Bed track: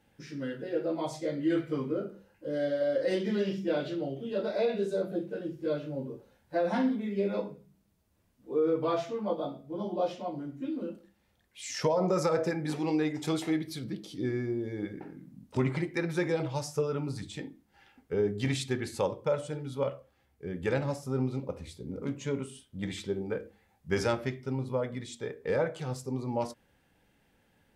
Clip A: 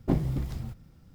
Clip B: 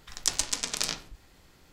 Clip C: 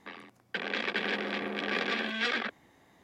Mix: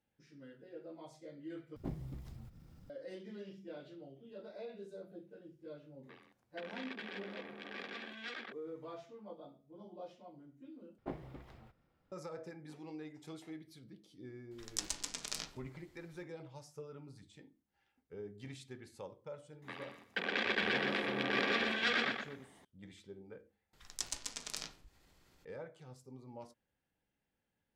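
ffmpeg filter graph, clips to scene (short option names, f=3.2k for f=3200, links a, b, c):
-filter_complex "[1:a]asplit=2[a][b];[3:a]asplit=2[c][d];[2:a]asplit=2[e][f];[0:a]volume=-18.5dB[g];[a]acompressor=mode=upward:threshold=-28dB:ratio=2.5:attack=3.2:release=140:knee=2.83:detection=peak[h];[b]acrossover=split=360 3300:gain=0.158 1 0.141[i][j][k];[i][j][k]amix=inputs=3:normalize=0[l];[d]aecho=1:1:121|242|363:0.562|0.141|0.0351[m];[f]acompressor=mode=upward:threshold=-47dB:ratio=2.5:attack=3.2:release=140:knee=2.83:detection=peak[n];[g]asplit=4[o][p][q][r];[o]atrim=end=1.764[s];[h]atrim=end=1.14,asetpts=PTS-STARTPTS,volume=-16dB[t];[p]atrim=start=2.896:end=10.984[u];[l]atrim=end=1.14,asetpts=PTS-STARTPTS,volume=-8.5dB[v];[q]atrim=start=12.116:end=23.734[w];[n]atrim=end=1.72,asetpts=PTS-STARTPTS,volume=-13dB[x];[r]atrim=start=25.446[y];[c]atrim=end=3.03,asetpts=PTS-STARTPTS,volume=-15dB,afade=t=in:d=0.004:c=hsin,afade=t=out:st=3.026:d=0.004:c=hsin,adelay=6030[z];[e]atrim=end=1.72,asetpts=PTS-STARTPTS,volume=-11.5dB,afade=t=in:d=0.004:c=hsin,afade=t=out:st=1.716:d=0.004:c=hsin,adelay=14510[aa];[m]atrim=end=3.03,asetpts=PTS-STARTPTS,volume=-3dB,afade=t=in:d=0.004:c=hsin,afade=t=out:st=3.026:d=0.004:c=hsin,adelay=19620[ab];[s][t]acrossfade=d=0.004:c1=hsin:c2=hsin[ac];[ac][u]acrossfade=d=0.004:c1=hsin:c2=hsin[ad];[ad][v]acrossfade=d=0.004:c1=hsin:c2=hsin[ae];[ae][w]acrossfade=d=0.004:c1=hsin:c2=hsin[af];[af][x]acrossfade=d=0.004:c1=hsin:c2=hsin[ag];[ag][y]acrossfade=d=0.004:c1=hsin:c2=hsin[ah];[ah][z][aa][ab]amix=inputs=4:normalize=0"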